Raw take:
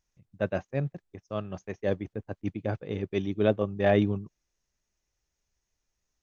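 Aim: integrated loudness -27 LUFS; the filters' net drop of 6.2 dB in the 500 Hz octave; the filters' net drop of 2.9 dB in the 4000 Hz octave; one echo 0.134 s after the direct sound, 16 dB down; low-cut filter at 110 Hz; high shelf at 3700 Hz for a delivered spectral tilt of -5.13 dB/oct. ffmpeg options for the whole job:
-af "highpass=110,equalizer=f=500:t=o:g=-8,highshelf=f=3.7k:g=6,equalizer=f=4k:t=o:g=-7,aecho=1:1:134:0.158,volume=7dB"

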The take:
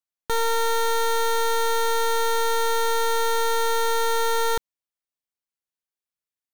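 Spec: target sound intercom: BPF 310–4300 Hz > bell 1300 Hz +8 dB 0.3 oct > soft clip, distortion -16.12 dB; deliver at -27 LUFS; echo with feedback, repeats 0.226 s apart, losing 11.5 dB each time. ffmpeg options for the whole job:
-af "highpass=310,lowpass=4.3k,equalizer=f=1.3k:t=o:w=0.3:g=8,aecho=1:1:226|452|678:0.266|0.0718|0.0194,asoftclip=threshold=-19.5dB,volume=-1.5dB"

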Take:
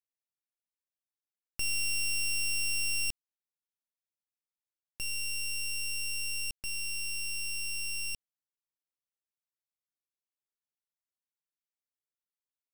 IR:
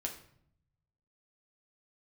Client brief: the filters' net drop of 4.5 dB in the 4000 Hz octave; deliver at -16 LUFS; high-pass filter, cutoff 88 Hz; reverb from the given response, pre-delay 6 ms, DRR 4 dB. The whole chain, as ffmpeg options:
-filter_complex "[0:a]highpass=88,equalizer=f=4k:t=o:g=-8.5,asplit=2[a][b];[1:a]atrim=start_sample=2205,adelay=6[c];[b][c]afir=irnorm=-1:irlink=0,volume=-4.5dB[d];[a][d]amix=inputs=2:normalize=0,volume=18.5dB"

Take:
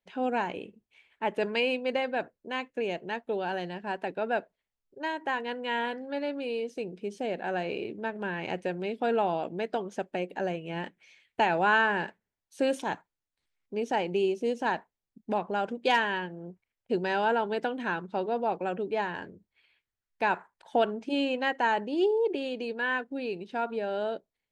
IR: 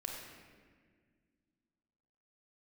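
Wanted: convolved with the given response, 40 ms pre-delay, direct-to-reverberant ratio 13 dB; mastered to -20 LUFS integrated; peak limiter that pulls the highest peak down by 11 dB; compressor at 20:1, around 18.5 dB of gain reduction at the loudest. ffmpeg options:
-filter_complex "[0:a]acompressor=threshold=-38dB:ratio=20,alimiter=level_in=11.5dB:limit=-24dB:level=0:latency=1,volume=-11.5dB,asplit=2[a][b];[1:a]atrim=start_sample=2205,adelay=40[c];[b][c]afir=irnorm=-1:irlink=0,volume=-13dB[d];[a][d]amix=inputs=2:normalize=0,volume=25.5dB"

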